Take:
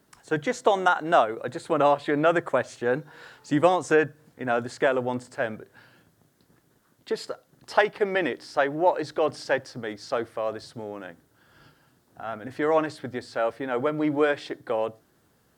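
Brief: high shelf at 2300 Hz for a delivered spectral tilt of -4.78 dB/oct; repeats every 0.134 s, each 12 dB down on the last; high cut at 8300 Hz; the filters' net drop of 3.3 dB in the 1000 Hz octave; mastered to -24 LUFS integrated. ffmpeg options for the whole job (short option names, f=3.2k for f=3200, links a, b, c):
-af "lowpass=8.3k,equalizer=f=1k:t=o:g=-3.5,highshelf=f=2.3k:g=-7,aecho=1:1:134|268|402:0.251|0.0628|0.0157,volume=3.5dB"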